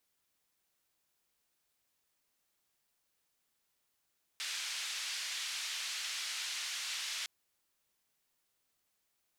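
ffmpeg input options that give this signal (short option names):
-f lavfi -i "anoisesrc=c=white:d=2.86:r=44100:seed=1,highpass=f=2000,lowpass=f=5200,volume=-26.6dB"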